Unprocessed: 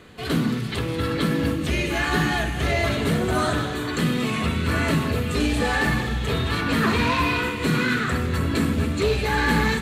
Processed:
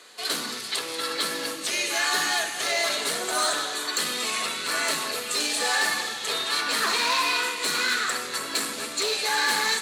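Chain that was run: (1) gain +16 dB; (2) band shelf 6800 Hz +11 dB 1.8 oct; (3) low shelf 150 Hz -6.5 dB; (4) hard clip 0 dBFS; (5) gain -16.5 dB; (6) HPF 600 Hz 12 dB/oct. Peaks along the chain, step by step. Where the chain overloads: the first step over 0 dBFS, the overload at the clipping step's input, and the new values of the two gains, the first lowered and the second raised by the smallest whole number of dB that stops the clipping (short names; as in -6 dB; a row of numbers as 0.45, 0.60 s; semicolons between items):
+6.5, +8.5, +8.5, 0.0, -16.5, -11.5 dBFS; step 1, 8.5 dB; step 1 +7 dB, step 5 -7.5 dB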